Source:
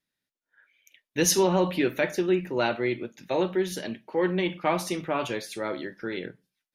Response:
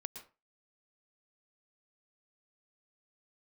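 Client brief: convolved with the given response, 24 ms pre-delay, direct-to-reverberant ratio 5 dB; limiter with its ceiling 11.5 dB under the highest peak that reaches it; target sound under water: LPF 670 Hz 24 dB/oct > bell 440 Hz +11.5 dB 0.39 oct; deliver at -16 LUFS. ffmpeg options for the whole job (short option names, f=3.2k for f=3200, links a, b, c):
-filter_complex "[0:a]alimiter=limit=-21dB:level=0:latency=1,asplit=2[a][b];[1:a]atrim=start_sample=2205,adelay=24[c];[b][c]afir=irnorm=-1:irlink=0,volume=-2dB[d];[a][d]amix=inputs=2:normalize=0,lowpass=f=670:w=0.5412,lowpass=f=670:w=1.3066,equalizer=f=440:t=o:w=0.39:g=11.5,volume=11.5dB"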